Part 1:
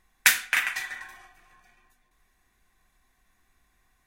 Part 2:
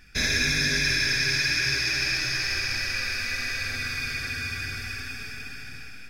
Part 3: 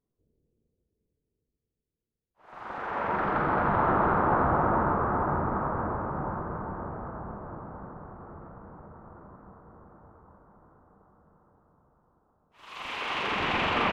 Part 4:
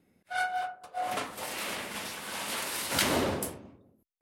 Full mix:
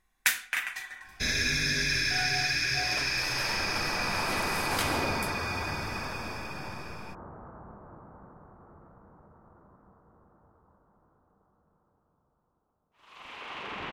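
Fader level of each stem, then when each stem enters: −6.5, −4.0, −9.0, −5.5 decibels; 0.00, 1.05, 0.40, 1.80 seconds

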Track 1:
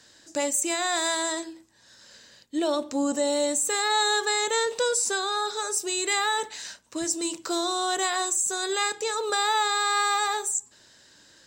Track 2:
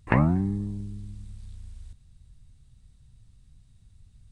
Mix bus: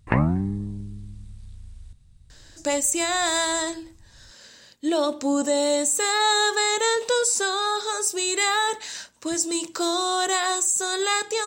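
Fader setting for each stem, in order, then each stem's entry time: +3.0, +0.5 decibels; 2.30, 0.00 seconds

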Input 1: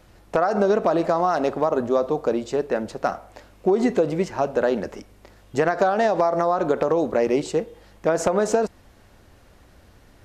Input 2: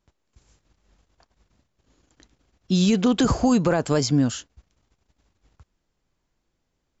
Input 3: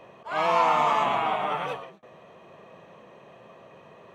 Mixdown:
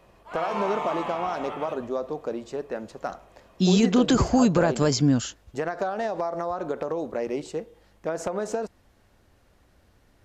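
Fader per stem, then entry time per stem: −8.5, −0.5, −8.5 decibels; 0.00, 0.90, 0.00 seconds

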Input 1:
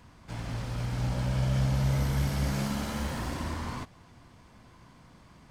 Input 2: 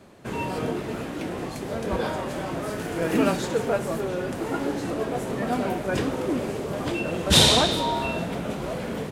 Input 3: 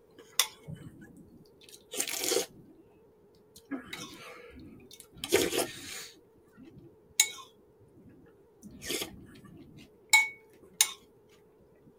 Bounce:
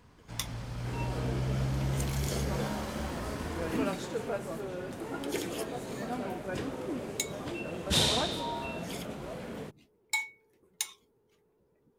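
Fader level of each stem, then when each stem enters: −5.0, −10.0, −9.5 decibels; 0.00, 0.60, 0.00 seconds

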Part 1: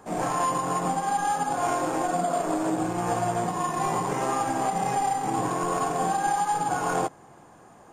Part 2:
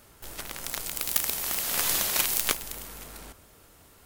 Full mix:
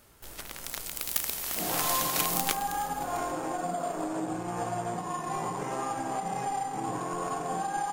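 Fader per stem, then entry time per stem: −6.5, −3.5 decibels; 1.50, 0.00 seconds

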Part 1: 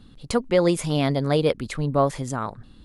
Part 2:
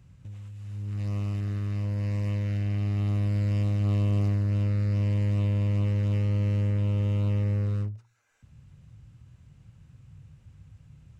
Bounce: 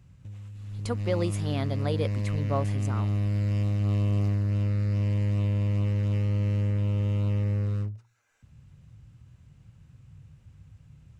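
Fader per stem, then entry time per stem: −9.5, −0.5 decibels; 0.55, 0.00 seconds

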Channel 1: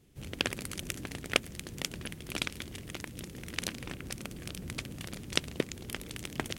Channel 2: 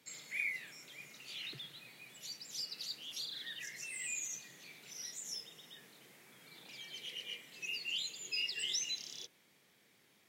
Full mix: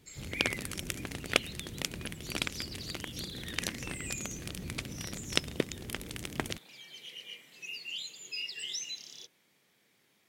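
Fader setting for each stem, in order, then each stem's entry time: +0.5, −1.0 decibels; 0.00, 0.00 seconds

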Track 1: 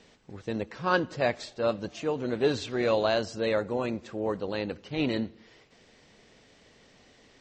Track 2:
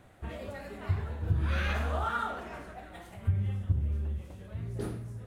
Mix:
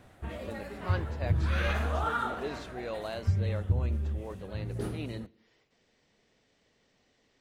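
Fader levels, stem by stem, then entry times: −12.0, +1.0 decibels; 0.00, 0.00 seconds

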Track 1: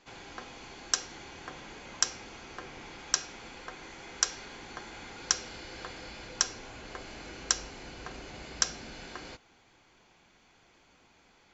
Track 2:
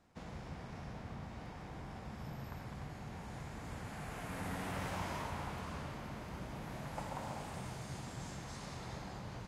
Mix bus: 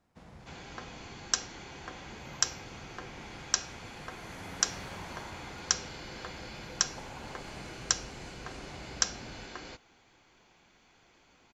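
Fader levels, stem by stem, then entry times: −0.5, −4.5 decibels; 0.40, 0.00 seconds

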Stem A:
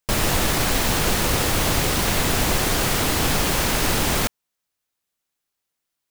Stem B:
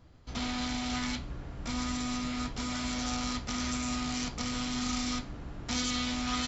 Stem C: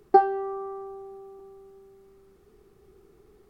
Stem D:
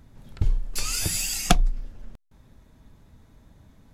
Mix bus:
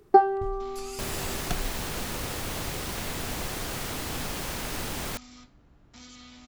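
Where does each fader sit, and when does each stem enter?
−12.5, −16.5, +0.5, −14.5 decibels; 0.90, 0.25, 0.00, 0.00 seconds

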